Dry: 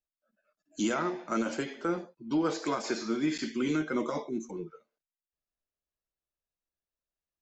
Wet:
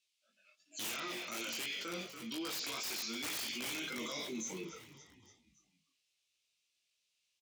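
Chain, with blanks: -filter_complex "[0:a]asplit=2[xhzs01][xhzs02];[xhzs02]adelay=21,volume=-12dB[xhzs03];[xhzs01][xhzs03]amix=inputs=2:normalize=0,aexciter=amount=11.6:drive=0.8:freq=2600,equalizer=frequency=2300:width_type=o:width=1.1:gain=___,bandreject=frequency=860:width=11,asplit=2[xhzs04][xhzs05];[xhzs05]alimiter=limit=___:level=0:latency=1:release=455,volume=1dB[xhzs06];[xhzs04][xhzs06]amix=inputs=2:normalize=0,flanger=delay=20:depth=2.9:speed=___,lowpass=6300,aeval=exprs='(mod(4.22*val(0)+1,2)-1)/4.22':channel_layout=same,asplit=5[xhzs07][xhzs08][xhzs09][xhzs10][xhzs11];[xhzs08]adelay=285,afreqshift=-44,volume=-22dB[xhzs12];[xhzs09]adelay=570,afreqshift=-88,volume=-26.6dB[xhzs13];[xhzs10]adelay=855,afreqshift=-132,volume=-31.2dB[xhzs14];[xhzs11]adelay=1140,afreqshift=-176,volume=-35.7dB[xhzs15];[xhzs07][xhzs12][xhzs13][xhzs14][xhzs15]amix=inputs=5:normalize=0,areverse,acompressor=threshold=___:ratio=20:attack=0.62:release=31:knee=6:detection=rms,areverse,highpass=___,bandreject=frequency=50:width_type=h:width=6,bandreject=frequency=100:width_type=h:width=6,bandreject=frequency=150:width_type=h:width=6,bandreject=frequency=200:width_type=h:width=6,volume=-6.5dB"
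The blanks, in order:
12, -10.5dB, 2.8, -29dB, 87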